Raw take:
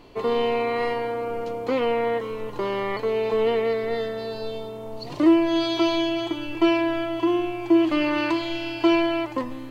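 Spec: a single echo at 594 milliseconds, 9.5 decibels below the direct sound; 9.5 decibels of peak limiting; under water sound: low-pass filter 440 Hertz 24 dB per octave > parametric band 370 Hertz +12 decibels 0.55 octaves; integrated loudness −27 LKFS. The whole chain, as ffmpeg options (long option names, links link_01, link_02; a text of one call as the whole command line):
ffmpeg -i in.wav -af "alimiter=limit=-18dB:level=0:latency=1,lowpass=frequency=440:width=0.5412,lowpass=frequency=440:width=1.3066,equalizer=frequency=370:width_type=o:width=0.55:gain=12,aecho=1:1:594:0.335,volume=-6dB" out.wav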